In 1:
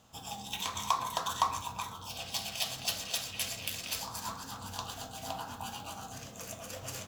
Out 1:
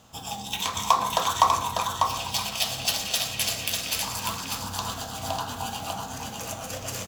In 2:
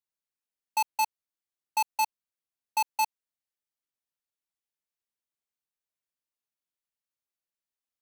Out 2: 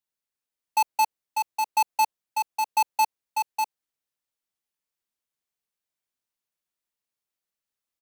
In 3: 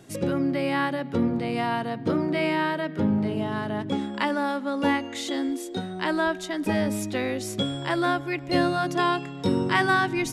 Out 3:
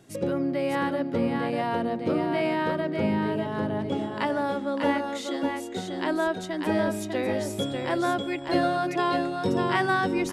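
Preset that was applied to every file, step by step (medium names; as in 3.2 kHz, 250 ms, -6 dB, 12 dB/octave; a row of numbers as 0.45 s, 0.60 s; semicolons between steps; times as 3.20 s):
dynamic bell 530 Hz, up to +6 dB, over -40 dBFS, Q 0.96; on a send: delay 596 ms -4.5 dB; on the sum: normalise loudness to -27 LUFS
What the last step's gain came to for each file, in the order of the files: +7.5 dB, +2.0 dB, -5.0 dB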